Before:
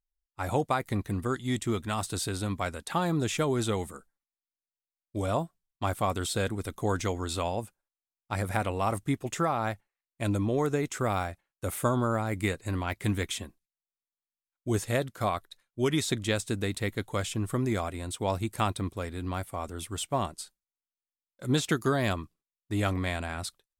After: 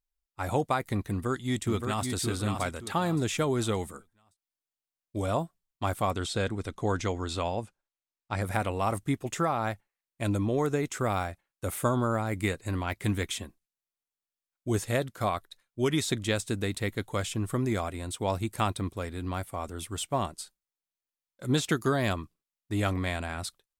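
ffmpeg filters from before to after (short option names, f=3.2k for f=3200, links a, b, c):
-filter_complex "[0:a]asplit=2[a][b];[b]afade=t=in:st=1.09:d=0.01,afade=t=out:st=2.08:d=0.01,aecho=0:1:570|1140|1710|2280:0.562341|0.168702|0.0506107|0.0151832[c];[a][c]amix=inputs=2:normalize=0,asettb=1/sr,asplit=3[d][e][f];[d]atrim=end=6.114[g];[e]atrim=start=6.11:end=8.42,asetpts=PTS-STARTPTS,afade=t=in:d=0.004:c=qsin,afade=t=out:st=2.306:d=0.004:c=qsin,lowpass=6.8k[h];[f]atrim=start=8.416[i];[g][h]acrossfade=d=0.004:c1=hsin:c2=qsin[j];[j][i]acrossfade=d=0.004:c1=qsin:c2=hsin"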